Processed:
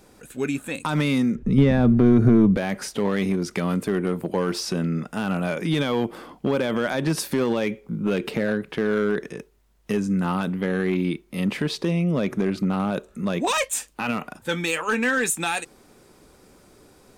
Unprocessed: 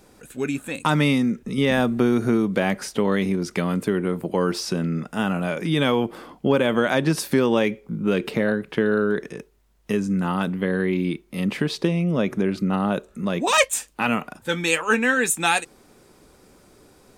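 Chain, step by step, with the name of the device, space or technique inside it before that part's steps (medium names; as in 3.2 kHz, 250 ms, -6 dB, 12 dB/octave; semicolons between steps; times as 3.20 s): limiter into clipper (peak limiter -12.5 dBFS, peak gain reduction 7.5 dB; hard clipper -15.5 dBFS, distortion -21 dB); 1.35–2.57 s: RIAA curve playback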